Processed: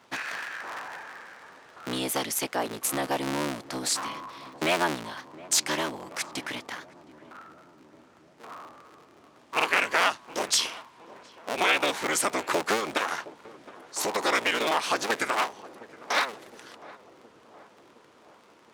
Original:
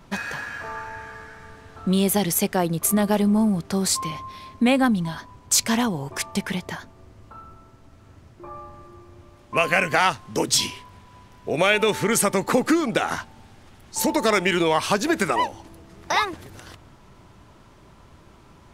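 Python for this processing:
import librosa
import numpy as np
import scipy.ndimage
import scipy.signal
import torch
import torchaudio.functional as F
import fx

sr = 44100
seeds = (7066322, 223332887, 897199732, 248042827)

y = fx.cycle_switch(x, sr, every=3, mode='inverted')
y = fx.weighting(y, sr, curve='A')
y = fx.echo_filtered(y, sr, ms=716, feedback_pct=74, hz=890.0, wet_db=-17.0)
y = fx.buffer_glitch(y, sr, at_s=(9.55, 13.36), block=2048, repeats=1)
y = y * librosa.db_to_amplitude(-4.0)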